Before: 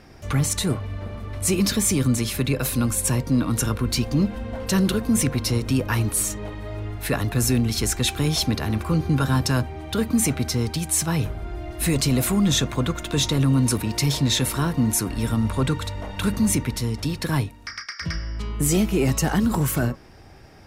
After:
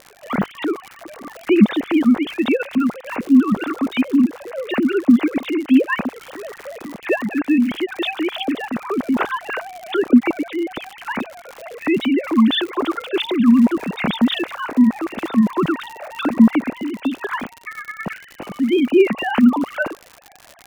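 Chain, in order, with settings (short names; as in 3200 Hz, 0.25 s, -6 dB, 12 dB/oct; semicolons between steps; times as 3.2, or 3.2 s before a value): sine-wave speech; crackle 100/s -30 dBFS; gain +4 dB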